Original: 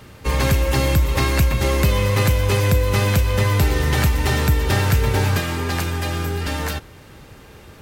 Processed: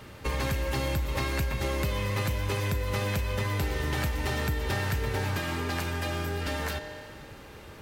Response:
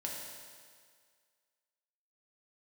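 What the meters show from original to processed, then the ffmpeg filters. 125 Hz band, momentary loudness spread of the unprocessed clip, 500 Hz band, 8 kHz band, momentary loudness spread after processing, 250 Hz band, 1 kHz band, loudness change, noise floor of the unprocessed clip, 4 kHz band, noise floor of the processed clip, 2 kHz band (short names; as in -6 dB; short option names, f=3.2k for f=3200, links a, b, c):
-12.0 dB, 6 LU, -10.0 dB, -11.5 dB, 7 LU, -10.0 dB, -9.0 dB, -11.0 dB, -44 dBFS, -9.5 dB, -46 dBFS, -8.0 dB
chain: -filter_complex "[0:a]asplit=2[a][b];[b]highpass=240,lowpass=5.5k[c];[1:a]atrim=start_sample=2205[d];[c][d]afir=irnorm=-1:irlink=0,volume=-7dB[e];[a][e]amix=inputs=2:normalize=0,acompressor=threshold=-25dB:ratio=2.5,volume=-4.5dB"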